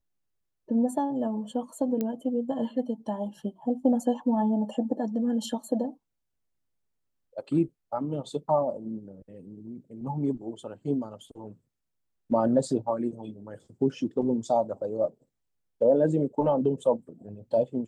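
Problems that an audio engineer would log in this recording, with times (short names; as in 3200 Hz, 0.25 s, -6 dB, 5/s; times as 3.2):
2.01 pop -17 dBFS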